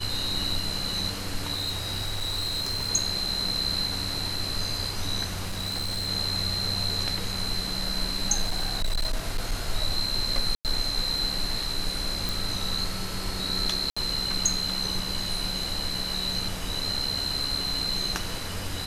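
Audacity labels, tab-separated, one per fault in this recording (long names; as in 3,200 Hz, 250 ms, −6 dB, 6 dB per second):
1.530000	2.900000	clipping −25 dBFS
5.470000	6.090000	clipping −26.5 dBFS
8.430000	9.530000	clipping −21.5 dBFS
10.550000	10.650000	drop-out 98 ms
12.290000	12.290000	click
13.900000	13.960000	drop-out 65 ms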